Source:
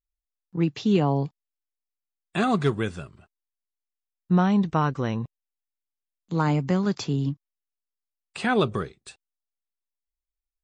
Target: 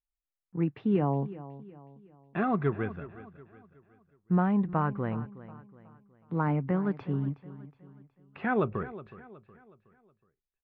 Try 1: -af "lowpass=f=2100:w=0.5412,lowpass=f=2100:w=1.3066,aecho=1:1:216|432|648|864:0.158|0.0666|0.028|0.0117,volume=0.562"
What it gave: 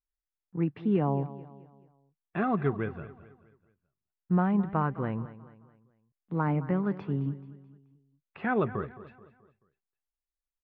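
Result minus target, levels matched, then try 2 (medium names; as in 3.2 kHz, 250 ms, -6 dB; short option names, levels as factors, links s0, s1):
echo 152 ms early
-af "lowpass=f=2100:w=0.5412,lowpass=f=2100:w=1.3066,aecho=1:1:368|736|1104|1472:0.158|0.0666|0.028|0.0117,volume=0.562"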